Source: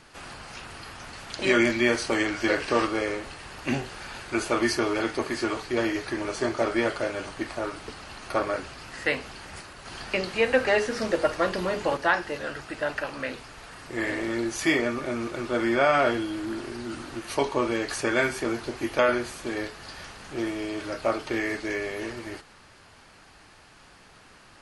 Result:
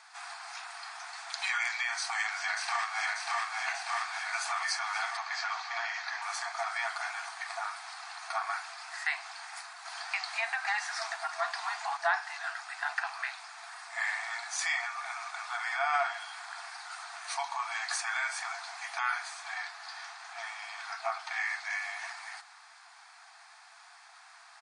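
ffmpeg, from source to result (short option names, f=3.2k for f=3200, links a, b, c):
-filter_complex "[0:a]asplit=2[a][b];[b]afade=t=in:st=1.97:d=0.01,afade=t=out:st=3.03:d=0.01,aecho=0:1:590|1180|1770|2360|2950|3540|4130|4720|5310|5900|6490|7080:0.707946|0.495562|0.346893|0.242825|0.169978|0.118984|0.0832891|0.0583024|0.0408117|0.0285682|0.0199977|0.0139984[c];[a][c]amix=inputs=2:normalize=0,asettb=1/sr,asplit=3[d][e][f];[d]atrim=end=5.174[g];[e]atrim=start=5.17:end=6.22,asetpts=PTS-STARTPTS,afade=t=in:d=0.004:c=qsin,afade=t=out:st=1.046:d=0.004:c=qsin,lowpass=f=6.2k:w=0.5412,lowpass=f=6.2k:w=1.3066[h];[f]atrim=start=6.216[i];[g][h]acrossfade=d=0.004:c1=hsin:c2=qsin[j];[j][i]acrossfade=d=0.004:c1=qsin:c2=hsin,asettb=1/sr,asplit=3[k][l][m];[k]atrim=end=19.284[n];[l]atrim=start=19.28:end=21.73,asetpts=PTS-STARTPTS,afade=t=in:d=0.004:c=qsin,afade=t=out:st=2.446:d=0.004:c=qsin,highshelf=f=9.9k:g=-11[o];[m]atrim=start=21.726[p];[n][o]acrossfade=d=0.004:c1=hsin:c2=qsin[q];[q][p]acrossfade=d=0.004:c1=qsin:c2=hsin,equalizer=f=2.9k:t=o:w=0.21:g=-11.5,alimiter=limit=-16.5dB:level=0:latency=1:release=163,afftfilt=real='re*between(b*sr/4096,660,9900)':imag='im*between(b*sr/4096,660,9900)':win_size=4096:overlap=0.75"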